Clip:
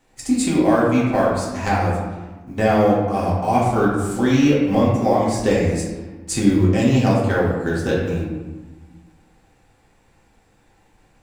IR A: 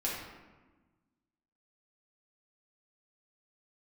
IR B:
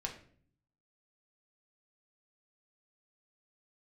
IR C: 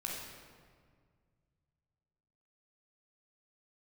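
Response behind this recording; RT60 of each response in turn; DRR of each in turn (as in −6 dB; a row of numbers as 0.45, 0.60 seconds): A; 1.3, 0.50, 1.9 seconds; −6.0, 0.0, −3.0 decibels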